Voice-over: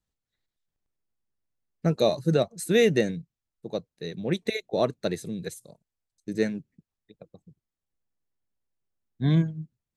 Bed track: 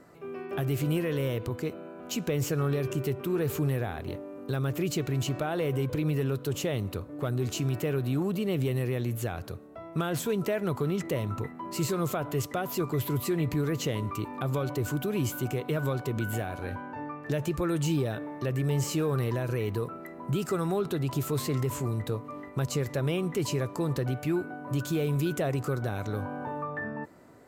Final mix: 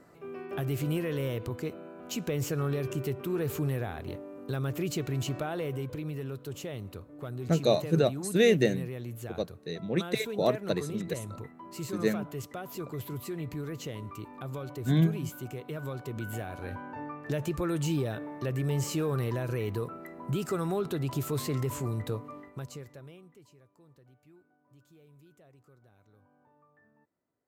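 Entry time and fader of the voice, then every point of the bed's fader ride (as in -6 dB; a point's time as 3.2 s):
5.65 s, -2.0 dB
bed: 5.39 s -2.5 dB
6.08 s -8.5 dB
15.74 s -8.5 dB
16.88 s -2 dB
22.23 s -2 dB
23.53 s -30.5 dB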